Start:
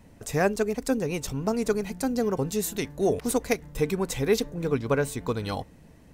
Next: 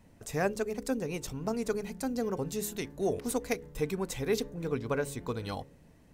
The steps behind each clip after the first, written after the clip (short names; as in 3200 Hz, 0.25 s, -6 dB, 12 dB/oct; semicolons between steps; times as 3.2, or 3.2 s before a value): de-hum 69.48 Hz, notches 8; gain -6 dB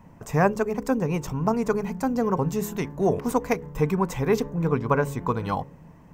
fifteen-band EQ 160 Hz +8 dB, 1000 Hz +11 dB, 4000 Hz -9 dB, 10000 Hz -11 dB; gain +6 dB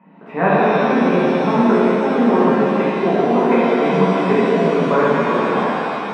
elliptic band-pass 190–2800 Hz, stop band 40 dB; shimmer reverb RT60 3.1 s, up +7 st, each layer -8 dB, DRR -10.5 dB; gain -1 dB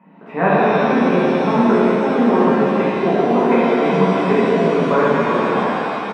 frequency-shifting echo 0.165 s, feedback 41%, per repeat -33 Hz, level -19 dB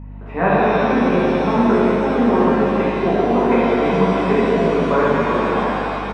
hum 50 Hz, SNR 17 dB; gain -1 dB